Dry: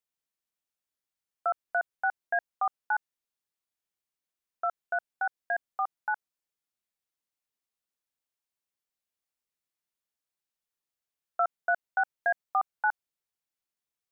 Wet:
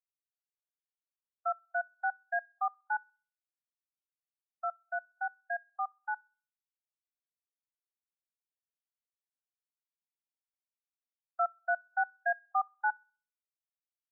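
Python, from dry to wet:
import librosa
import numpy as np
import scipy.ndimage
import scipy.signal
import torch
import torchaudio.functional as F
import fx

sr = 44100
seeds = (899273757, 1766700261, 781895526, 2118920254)

y = scipy.signal.sosfilt(scipy.signal.cheby1(4, 1.0, [550.0, 1800.0], 'bandpass', fs=sr, output='sos'), x)
y = fx.echo_wet_highpass(y, sr, ms=65, feedback_pct=50, hz=1400.0, wet_db=-15)
y = fx.spectral_expand(y, sr, expansion=1.5)
y = y * 10.0 ** (-2.0 / 20.0)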